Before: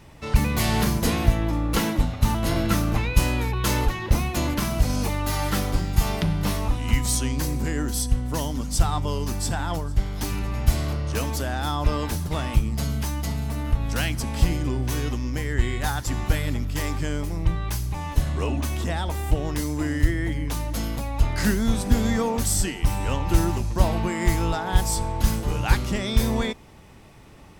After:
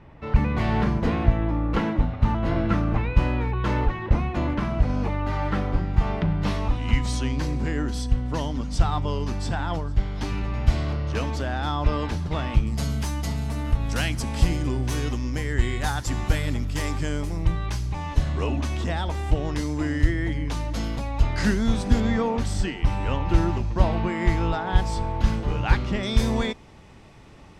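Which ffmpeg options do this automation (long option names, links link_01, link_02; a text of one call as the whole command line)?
ffmpeg -i in.wav -af "asetnsamples=nb_out_samples=441:pad=0,asendcmd='6.42 lowpass f 4000;12.67 lowpass f 9400;17.66 lowpass f 5700;22 lowpass f 3500;26.03 lowpass f 7200',lowpass=2000" out.wav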